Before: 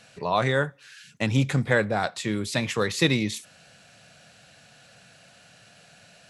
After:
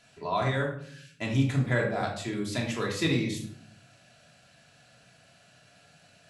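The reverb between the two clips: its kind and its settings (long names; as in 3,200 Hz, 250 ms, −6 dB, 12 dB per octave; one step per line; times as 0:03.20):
rectangular room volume 980 cubic metres, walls furnished, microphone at 3 metres
level −9 dB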